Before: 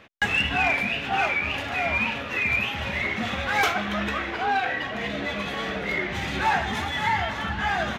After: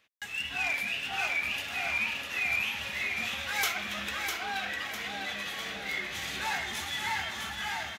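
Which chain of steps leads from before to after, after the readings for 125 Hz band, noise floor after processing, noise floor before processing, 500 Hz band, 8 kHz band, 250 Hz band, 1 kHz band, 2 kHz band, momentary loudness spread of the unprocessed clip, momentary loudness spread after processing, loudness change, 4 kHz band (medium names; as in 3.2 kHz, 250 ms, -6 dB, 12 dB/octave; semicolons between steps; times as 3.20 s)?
-15.5 dB, -40 dBFS, -32 dBFS, -13.5 dB, +3.0 dB, -15.0 dB, -11.5 dB, -6.0 dB, 6 LU, 6 LU, -6.5 dB, -3.0 dB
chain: pre-emphasis filter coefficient 0.9; level rider gain up to 10 dB; on a send: feedback delay 652 ms, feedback 44%, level -5.5 dB; on the sum: trim -6.5 dB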